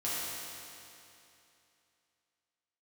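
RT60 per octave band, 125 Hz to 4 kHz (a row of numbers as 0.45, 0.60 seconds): 2.8, 2.8, 2.8, 2.8, 2.8, 2.7 seconds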